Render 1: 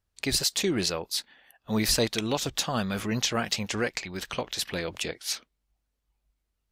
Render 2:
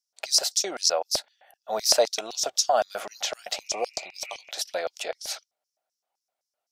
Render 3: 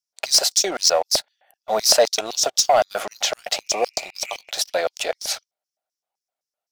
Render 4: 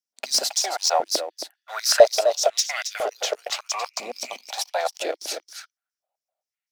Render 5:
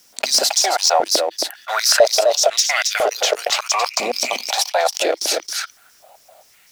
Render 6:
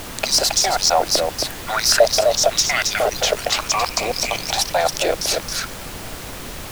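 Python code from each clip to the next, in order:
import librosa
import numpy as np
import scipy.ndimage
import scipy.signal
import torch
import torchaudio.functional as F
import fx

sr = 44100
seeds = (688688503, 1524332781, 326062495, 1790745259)

y1 = fx.spec_repair(x, sr, seeds[0], start_s=3.65, length_s=0.83, low_hz=1200.0, high_hz=2900.0, source='before')
y1 = fx.small_body(y1, sr, hz=(760.0, 1400.0), ring_ms=30, db=8)
y1 = fx.filter_lfo_highpass(y1, sr, shape='square', hz=3.9, low_hz=620.0, high_hz=5500.0, q=5.6)
y1 = y1 * 10.0 ** (-2.5 / 20.0)
y2 = fx.leveller(y1, sr, passes=2)
y3 = y2 + 10.0 ** (-9.5 / 20.0) * np.pad(y2, (int(271 * sr / 1000.0), 0))[:len(y2)]
y3 = fx.filter_held_highpass(y3, sr, hz=2.0, low_hz=240.0, high_hz=2000.0)
y3 = y3 * 10.0 ** (-5.5 / 20.0)
y4 = fx.env_flatten(y3, sr, amount_pct=50)
y4 = y4 * 10.0 ** (-1.0 / 20.0)
y5 = fx.dmg_noise_colour(y4, sr, seeds[1], colour='pink', level_db=-31.0)
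y5 = y5 * 10.0 ** (-1.0 / 20.0)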